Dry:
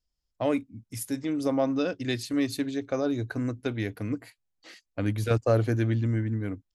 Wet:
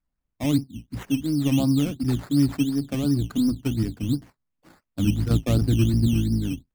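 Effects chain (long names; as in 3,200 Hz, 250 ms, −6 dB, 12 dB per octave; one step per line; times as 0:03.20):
sub-octave generator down 1 octave, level −2 dB
octave-band graphic EQ 125/250/500/2,000/8,000 Hz +3/+10/−10/−11/−8 dB
sample-and-hold swept by an LFO 12×, swing 60% 2.8 Hz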